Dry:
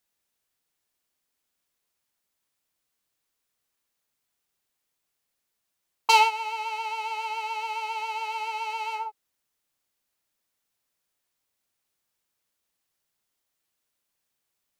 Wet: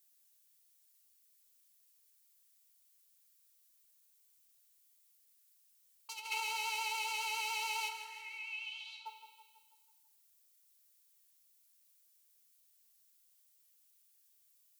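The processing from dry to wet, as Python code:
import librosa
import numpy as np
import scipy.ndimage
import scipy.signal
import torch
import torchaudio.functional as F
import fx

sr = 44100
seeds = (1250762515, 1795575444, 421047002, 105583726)

p1 = fx.bandpass_q(x, sr, hz=fx.line((7.88, 1500.0), (9.05, 4100.0)), q=6.6, at=(7.88, 9.05), fade=0.02)
p2 = fx.room_shoebox(p1, sr, seeds[0], volume_m3=2100.0, walls='furnished', distance_m=1.7)
p3 = fx.over_compress(p2, sr, threshold_db=-28.0, ratio=-1.0)
p4 = np.diff(p3, prepend=0.0)
p5 = p4 + fx.echo_feedback(p4, sr, ms=164, feedback_pct=55, wet_db=-11.0, dry=0)
y = p5 * 10.0 ** (3.0 / 20.0)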